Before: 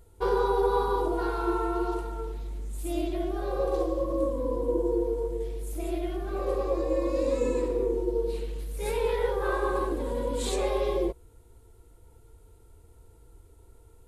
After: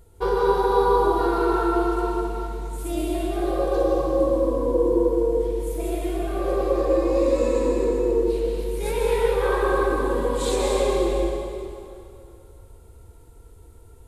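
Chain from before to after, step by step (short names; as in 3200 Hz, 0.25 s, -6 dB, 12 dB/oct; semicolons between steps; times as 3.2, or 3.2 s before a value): bell 160 Hz +2.5 dB; plate-style reverb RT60 2.5 s, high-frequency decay 0.9×, pre-delay 0.11 s, DRR -1 dB; gain +3 dB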